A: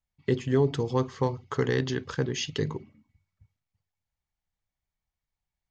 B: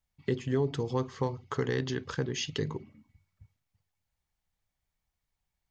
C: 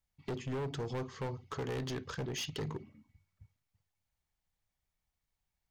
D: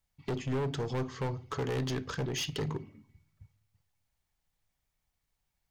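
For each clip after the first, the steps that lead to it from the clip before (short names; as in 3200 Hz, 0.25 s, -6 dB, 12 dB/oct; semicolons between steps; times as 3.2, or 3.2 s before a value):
compressor 1.5:1, threshold -44 dBFS, peak gain reduction 9 dB; gain +3.5 dB
hard clip -31.5 dBFS, distortion -7 dB; gain -2.5 dB
shoebox room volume 860 m³, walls furnished, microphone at 0.31 m; gain +4 dB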